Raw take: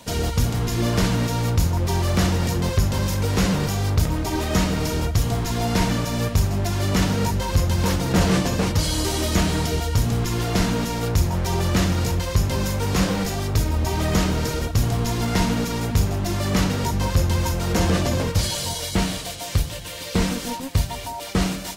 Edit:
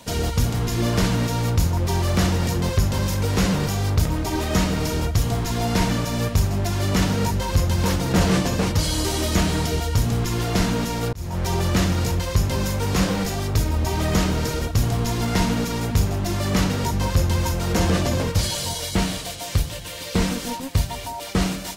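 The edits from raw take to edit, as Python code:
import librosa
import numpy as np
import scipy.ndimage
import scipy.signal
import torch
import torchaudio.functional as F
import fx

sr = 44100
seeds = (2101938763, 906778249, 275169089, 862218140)

y = fx.edit(x, sr, fx.fade_in_span(start_s=11.13, length_s=0.31), tone=tone)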